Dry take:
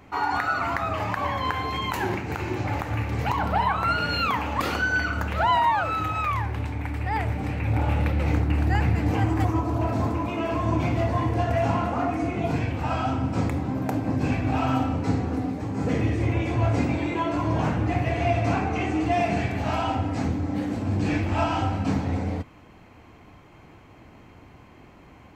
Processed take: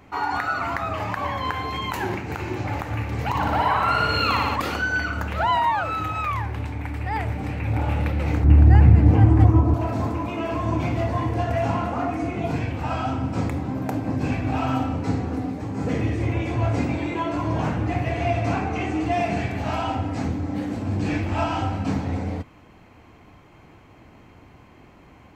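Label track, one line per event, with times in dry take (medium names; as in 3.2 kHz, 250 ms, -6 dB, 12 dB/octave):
3.290000	4.560000	flutter echo walls apart 10 m, dies away in 1.4 s
8.440000	9.740000	tilt EQ -3 dB/octave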